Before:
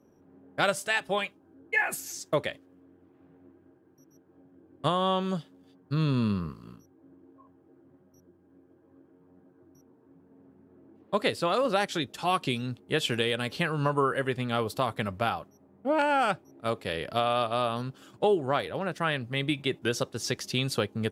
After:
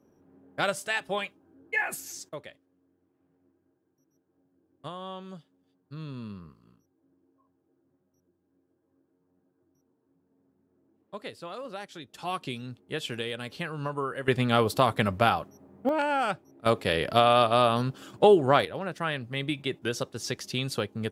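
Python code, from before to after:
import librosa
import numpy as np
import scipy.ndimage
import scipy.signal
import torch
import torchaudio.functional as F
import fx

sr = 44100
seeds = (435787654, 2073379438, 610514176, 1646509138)

y = fx.gain(x, sr, db=fx.steps((0.0, -2.0), (2.29, -13.0), (12.13, -6.0), (14.28, 5.5), (15.89, -2.0), (16.66, 6.0), (18.65, -2.0)))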